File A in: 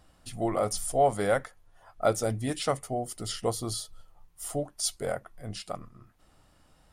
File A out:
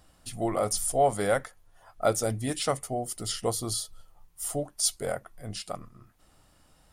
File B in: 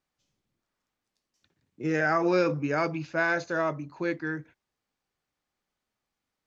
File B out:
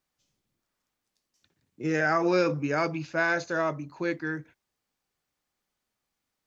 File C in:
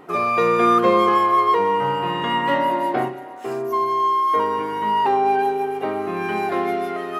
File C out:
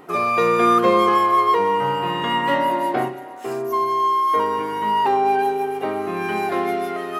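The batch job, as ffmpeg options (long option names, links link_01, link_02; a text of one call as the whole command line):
ffmpeg -i in.wav -af "highshelf=frequency=5400:gain=6" out.wav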